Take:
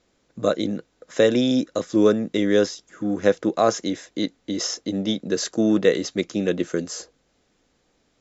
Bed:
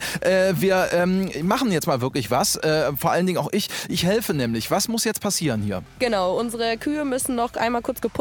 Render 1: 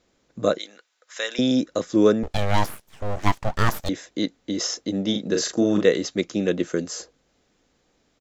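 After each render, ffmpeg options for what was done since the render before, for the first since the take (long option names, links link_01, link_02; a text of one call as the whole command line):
ffmpeg -i in.wav -filter_complex "[0:a]asettb=1/sr,asplit=3[link_01][link_02][link_03];[link_01]atrim=end=0.584[link_04];[link_02]atrim=start=0.58:end=1.39,asetpts=PTS-STARTPTS,afade=type=in:duration=0.004:curve=qsin,afade=type=out:start_time=0.806:duration=0.004:curve=qsin,highpass=1300[link_05];[link_03]atrim=start=1.386[link_06];[link_04][link_05]acrossfade=duration=0.004:curve1=hsin:curve2=qsin[link_07];[link_07][link_06]acrossfade=duration=0.004:curve1=qsin:curve2=hsin,asettb=1/sr,asplit=3[link_08][link_09][link_10];[link_08]atrim=end=2.234[link_11];[link_09]atrim=start=2.23:end=3.89,asetpts=PTS-STARTPTS,afade=type=in:duration=0.004:curve=qsin,afade=type=out:start_time=1.656:duration=0.004:curve=qsin,aeval=exprs='abs(val(0))':channel_layout=same[link_12];[link_10]atrim=start=3.886[link_13];[link_11][link_12]acrossfade=duration=0.004:curve1=hsin:curve2=qsin[link_14];[link_14][link_13]acrossfade=duration=0.004:curve1=qsin:curve2=hsin,asplit=3[link_15][link_16][link_17];[link_15]afade=type=out:start_time=5.13:duration=0.02[link_18];[link_16]asplit=2[link_19][link_20];[link_20]adelay=39,volume=-4.5dB[link_21];[link_19][link_21]amix=inputs=2:normalize=0,afade=type=in:start_time=5.13:duration=0.02,afade=type=out:start_time=5.84:duration=0.02[link_22];[link_17]afade=type=in:start_time=5.84:duration=0.02[link_23];[link_18][link_22][link_23]amix=inputs=3:normalize=0" out.wav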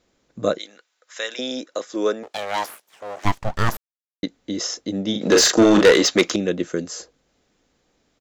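ffmpeg -i in.wav -filter_complex "[0:a]asettb=1/sr,asplit=3[link_01][link_02][link_03];[link_01]atrim=end=1.344[link_04];[link_02]atrim=start=1.34:end=3.25,asetpts=PTS-STARTPTS,afade=type=in:duration=0.004:curve=qsin,afade=type=out:start_time=1.906:duration=0.004:curve=qsin,highpass=470[link_05];[link_03]atrim=start=3.246[link_06];[link_04][link_05]acrossfade=duration=0.004:curve1=hsin:curve2=qsin[link_07];[link_07][link_06]acrossfade=duration=0.004:curve1=qsin:curve2=hsin,asettb=1/sr,asplit=3[link_08][link_09][link_10];[link_08]atrim=end=5.214[link_11];[link_09]atrim=start=5.21:end=6.36,asetpts=PTS-STARTPTS,afade=type=in:duration=0.004:curve=qsin,afade=type=out:start_time=1.146:duration=0.004:curve=qsin,asplit=2[link_12][link_13];[link_13]highpass=frequency=720:poles=1,volume=24dB,asoftclip=type=tanh:threshold=-3.5dB[link_14];[link_12][link_14]amix=inputs=2:normalize=0,lowpass=frequency=5300:poles=1,volume=-6dB[link_15];[link_10]atrim=start=6.356[link_16];[link_11][link_15]acrossfade=duration=0.004:curve1=hsin:curve2=qsin[link_17];[link_17][link_16]acrossfade=duration=0.004:curve1=qsin:curve2=hsin,asplit=3[link_18][link_19][link_20];[link_18]atrim=end=3.77,asetpts=PTS-STARTPTS,afade=type=out:start_time=3.766:duration=0.004:curve=hsin[link_21];[link_19]atrim=start=3.77:end=4.23,asetpts=PTS-STARTPTS,volume=0[link_22];[link_20]atrim=start=4.23,asetpts=PTS-STARTPTS,afade=type=in:duration=0.004:curve=hsin[link_23];[link_21][link_22][link_23]concat=n=3:v=0:a=1" out.wav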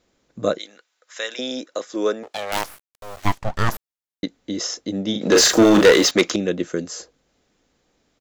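ffmpeg -i in.wav -filter_complex "[0:a]asettb=1/sr,asplit=3[link_01][link_02][link_03];[link_01]atrim=end=2.524[link_04];[link_02]atrim=start=2.52:end=3.33,asetpts=PTS-STARTPTS,afade=type=in:duration=0.004:curve=qsin,afade=type=out:start_time=0.806:duration=0.004:curve=qsin,acrusher=bits=4:dc=4:mix=0:aa=0.000001[link_05];[link_03]atrim=start=3.326[link_06];[link_04][link_05]acrossfade=duration=0.004:curve1=hsin:curve2=qsin[link_07];[link_07][link_06]acrossfade=duration=0.004:curve1=qsin:curve2=hsin,asettb=1/sr,asplit=3[link_08][link_09][link_10];[link_08]atrim=end=5.354[link_11];[link_09]atrim=start=5.35:end=6.11,asetpts=PTS-STARTPTS,afade=type=in:duration=0.004:curve=qsin,afade=type=out:start_time=0.756:duration=0.004:curve=qsin,aeval=exprs='val(0)+0.5*0.0473*sgn(val(0))':channel_layout=same[link_12];[link_10]atrim=start=6.106[link_13];[link_11][link_12]acrossfade=duration=0.004:curve1=hsin:curve2=qsin[link_14];[link_14][link_13]acrossfade=duration=0.004:curve1=qsin:curve2=hsin" out.wav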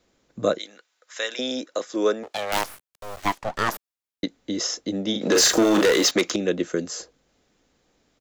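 ffmpeg -i in.wav -filter_complex "[0:a]acrossover=split=230|6900[link_01][link_02][link_03];[link_01]acompressor=threshold=-34dB:ratio=6[link_04];[link_02]alimiter=limit=-9dB:level=0:latency=1:release=277[link_05];[link_04][link_05][link_03]amix=inputs=3:normalize=0" out.wav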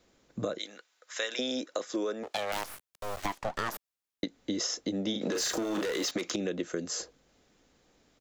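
ffmpeg -i in.wav -af "alimiter=limit=-15dB:level=0:latency=1:release=53,acompressor=threshold=-29dB:ratio=6" out.wav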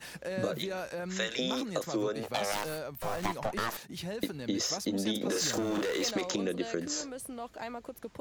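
ffmpeg -i in.wav -i bed.wav -filter_complex "[1:a]volume=-18dB[link_01];[0:a][link_01]amix=inputs=2:normalize=0" out.wav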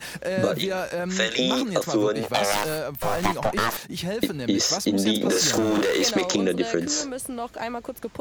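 ffmpeg -i in.wav -af "volume=9.5dB" out.wav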